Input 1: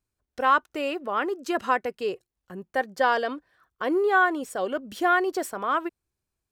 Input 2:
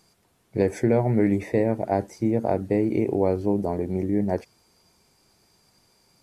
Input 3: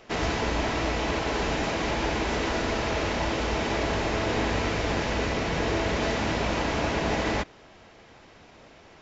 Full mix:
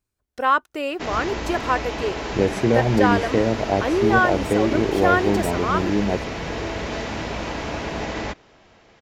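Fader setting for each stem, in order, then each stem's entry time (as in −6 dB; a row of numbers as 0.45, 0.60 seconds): +2.0, +2.0, −1.5 decibels; 0.00, 1.80, 0.90 seconds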